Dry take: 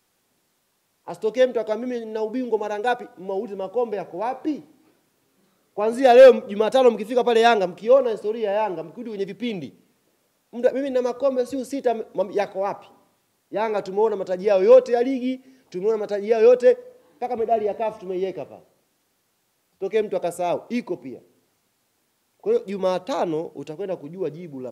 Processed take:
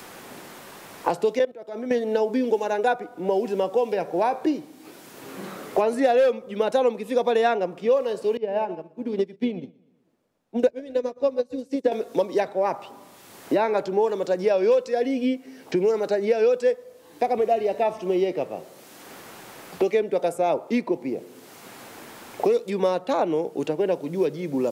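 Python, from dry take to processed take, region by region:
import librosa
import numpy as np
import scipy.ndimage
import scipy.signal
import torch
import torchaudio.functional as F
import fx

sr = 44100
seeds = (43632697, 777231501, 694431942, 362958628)

y = fx.chain(x, sr, fx.level_steps(step_db=16),
    fx.upward_expand(threshold_db=-32.0, expansion=1.5), at=(1.39, 1.91))
y = fx.chain(y, sr, fx.tilt_eq(slope=-3.0),
    fx.echo_feedback(ms=121, feedback_pct=36, wet_db=-12.5),
    fx.upward_expand(threshold_db=-35.0, expansion=2.5), at=(8.37, 11.92))
y = fx.low_shelf(y, sr, hz=140.0, db=-8.0)
y = fx.band_squash(y, sr, depth_pct=100)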